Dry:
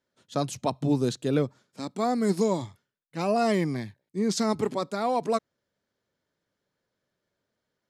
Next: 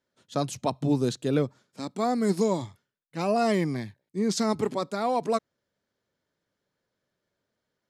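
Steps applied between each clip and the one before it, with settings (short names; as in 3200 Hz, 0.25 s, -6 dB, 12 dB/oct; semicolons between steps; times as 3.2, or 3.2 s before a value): nothing audible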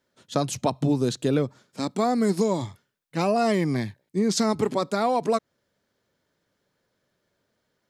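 compressor 3:1, threshold -27 dBFS, peak gain reduction 7 dB; gain +7 dB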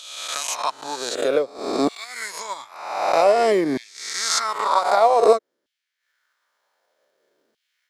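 spectral swells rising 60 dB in 1.39 s; LFO high-pass saw down 0.53 Hz 300–2900 Hz; transient shaper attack +5 dB, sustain -8 dB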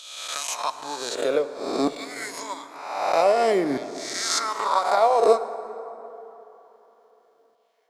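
plate-style reverb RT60 3.6 s, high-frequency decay 0.45×, DRR 11.5 dB; gain -3 dB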